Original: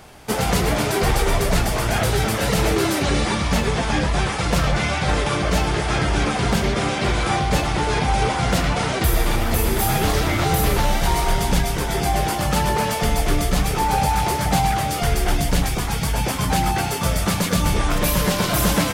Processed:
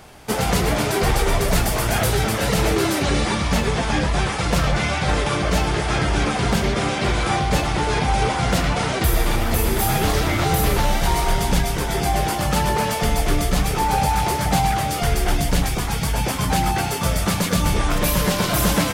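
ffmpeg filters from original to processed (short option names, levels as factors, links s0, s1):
-filter_complex "[0:a]asettb=1/sr,asplit=3[s0][s1][s2];[s0]atrim=end=1.484[s3];[s1]atrim=start=1.48:end=2.15,asetpts=PTS-STARTPTS,afade=t=in:d=0.004:c=qsin,afade=t=out:st=0.666:d=0.004:c=qsin,highshelf=f=11000:g=9[s4];[s2]atrim=start=2.146[s5];[s3][s4]acrossfade=d=0.004:c1=hsin:c2=qsin[s6];[s6][s5]acrossfade=d=0.004:c1=qsin:c2=hsin"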